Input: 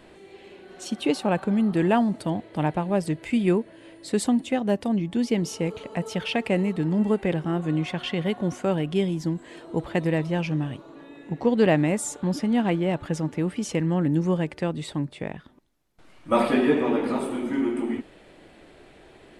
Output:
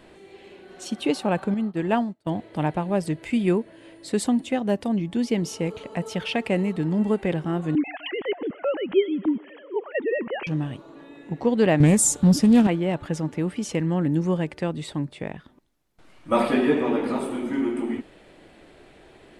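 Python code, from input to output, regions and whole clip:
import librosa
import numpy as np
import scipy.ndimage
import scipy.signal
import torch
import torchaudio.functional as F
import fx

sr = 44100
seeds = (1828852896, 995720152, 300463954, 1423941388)

y = fx.chain(x, sr, fx.peak_eq(hz=9700.0, db=-6.5, octaves=0.29),
    fx.upward_expand(threshold_db=-38.0, expansion=2.5), at=(1.54, 2.27))
y = fx.chain(y, sr, fx.sine_speech(),
    fx.echo_thinned(ms=124, feedback_pct=78, hz=300.0, wet_db=-23.5), at=(7.75, 10.47))
y = fx.chain(y, sr, fx.bass_treble(bass_db=13, treble_db=13),
    fx.doppler_dist(depth_ms=0.22), at=(11.8, 12.67))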